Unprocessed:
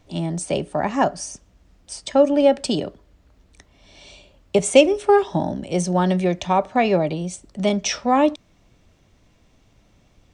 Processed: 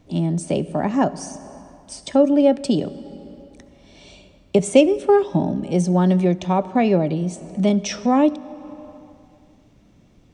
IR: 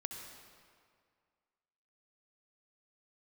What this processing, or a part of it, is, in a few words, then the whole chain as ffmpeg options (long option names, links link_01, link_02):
compressed reverb return: -filter_complex "[0:a]equalizer=frequency=220:width=0.58:gain=9.5,asplit=2[link_01][link_02];[1:a]atrim=start_sample=2205[link_03];[link_02][link_03]afir=irnorm=-1:irlink=0,acompressor=threshold=-24dB:ratio=5,volume=-2dB[link_04];[link_01][link_04]amix=inputs=2:normalize=0,volume=-6dB"